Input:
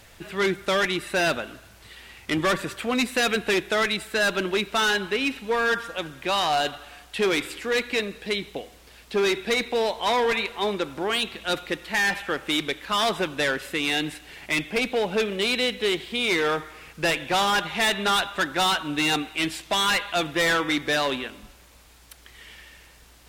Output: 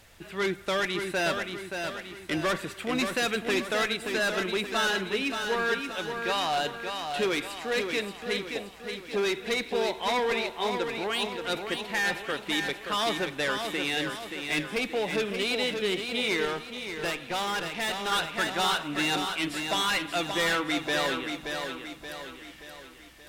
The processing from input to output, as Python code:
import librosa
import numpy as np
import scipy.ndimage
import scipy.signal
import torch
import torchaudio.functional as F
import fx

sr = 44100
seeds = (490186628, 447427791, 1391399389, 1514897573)

y = fx.echo_feedback(x, sr, ms=577, feedback_pct=48, wet_db=-6.0)
y = fx.tube_stage(y, sr, drive_db=19.0, bias=0.6, at=(16.45, 18.12))
y = y * 10.0 ** (-5.0 / 20.0)